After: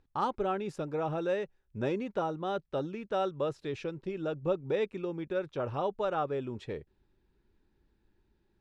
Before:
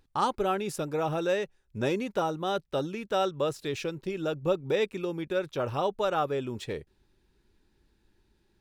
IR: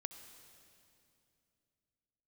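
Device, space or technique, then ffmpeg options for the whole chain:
through cloth: -af "lowpass=7.9k,highshelf=f=3.3k:g=-12,volume=-3dB"

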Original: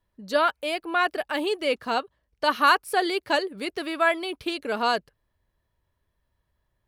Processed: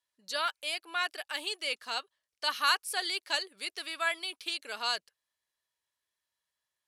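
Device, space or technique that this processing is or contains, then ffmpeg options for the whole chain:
piezo pickup straight into a mixer: -af "lowpass=8.1k,aderivative,volume=5.5dB"

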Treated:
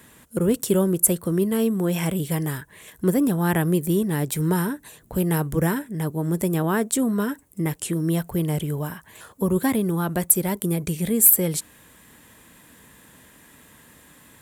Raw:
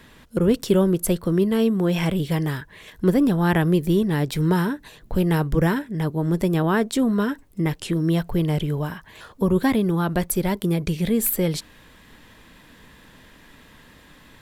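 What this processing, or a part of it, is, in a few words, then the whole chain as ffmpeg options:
budget condenser microphone: -af "highpass=69,highshelf=f=6.3k:t=q:w=1.5:g=10,volume=-2dB"

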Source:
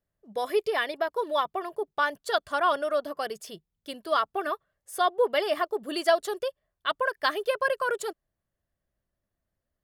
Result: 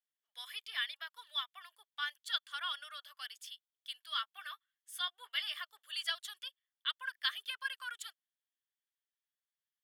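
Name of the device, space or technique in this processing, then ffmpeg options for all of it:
headphones lying on a table: -filter_complex "[0:a]asettb=1/sr,asplit=3[a][b][c];[a]atrim=end=4.154[d];[b]atrim=start=4.15:end=5.53,asetpts=PTS-STARTPTS,afade=t=in:d=0.004:c=qsin,afade=t=out:st=1.376:d=0.004:c=qsin,asplit=2[e][f];[f]adelay=14,volume=-12.5dB[g];[e][g]amix=inputs=2:normalize=0,atrim=end_sample=60858[h];[c]atrim=start=5.526[i];[d][h]acrossfade=d=0.004:c1=hsin:c2=qsin[j];[j][i]acrossfade=d=0.004:c1=qsin:c2=hsin,highpass=f=1.5k:w=0.5412,highpass=f=1.5k:w=1.3066,equalizer=f=3.3k:t=o:w=0.32:g=11,volume=-8dB"

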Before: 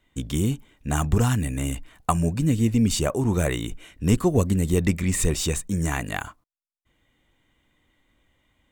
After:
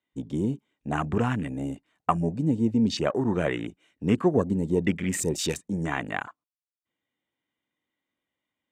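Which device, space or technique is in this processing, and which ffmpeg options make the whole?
over-cleaned archive recording: -af "highpass=180,lowpass=7.7k,afwtdn=0.0178"

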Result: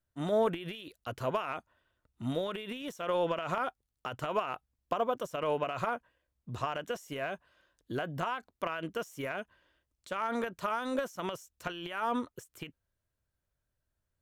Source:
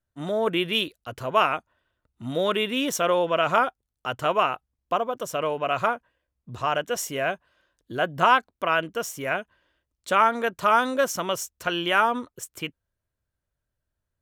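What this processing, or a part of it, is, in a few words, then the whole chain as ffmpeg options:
de-esser from a sidechain: -filter_complex "[0:a]asplit=2[a][b];[b]highpass=4.7k,apad=whole_len=626903[c];[a][c]sidechaincompress=threshold=-48dB:ratio=20:attack=1.9:release=47,volume=-1.5dB"

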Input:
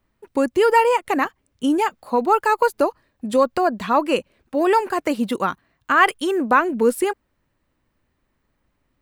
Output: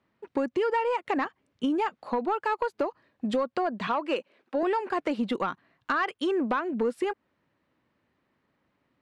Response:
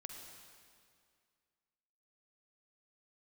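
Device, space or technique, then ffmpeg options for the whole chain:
AM radio: -filter_complex "[0:a]asettb=1/sr,asplit=3[a][b][c];[a]atrim=end=3.874[d];[b]atrim=start=3.87:end=4.63,asetpts=PTS-STARTPTS,afade=t=in:d=0.004:c=qsin,afade=t=out:st=0.756:d=0.004:c=qsin,highpass=300[e];[c]atrim=start=4.626[f];[d][e]acrossfade=d=0.004:c1=hsin:c2=qsin[g];[g][f]acrossfade=d=0.004:c1=qsin:c2=hsin,highpass=140,lowpass=4.1k,acompressor=threshold=-23dB:ratio=6,asoftclip=type=tanh:threshold=-17dB"

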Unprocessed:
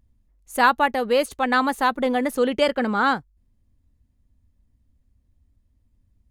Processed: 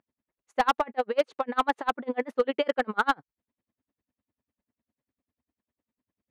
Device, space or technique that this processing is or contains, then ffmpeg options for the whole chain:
helicopter radio: -af "highpass=340,lowpass=2.6k,aeval=exprs='val(0)*pow(10,-36*(0.5-0.5*cos(2*PI*10*n/s))/20)':c=same,asoftclip=type=hard:threshold=-17.5dB,volume=3dB"

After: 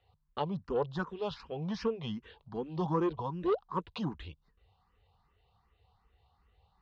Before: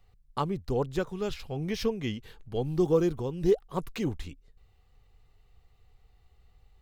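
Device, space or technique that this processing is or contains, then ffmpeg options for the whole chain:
barber-pole phaser into a guitar amplifier: -filter_complex "[0:a]asplit=2[a][b];[b]afreqshift=2.6[c];[a][c]amix=inputs=2:normalize=1,asoftclip=type=tanh:threshold=-22dB,highpass=76,equalizer=f=120:t=q:w=4:g=-8,equalizer=f=270:t=q:w=4:g=-6,equalizer=f=390:t=q:w=4:g=-4,equalizer=f=990:t=q:w=4:g=10,equalizer=f=2.2k:t=q:w=4:g=-7,lowpass=f=4.3k:w=0.5412,lowpass=f=4.3k:w=1.3066,volume=2dB"

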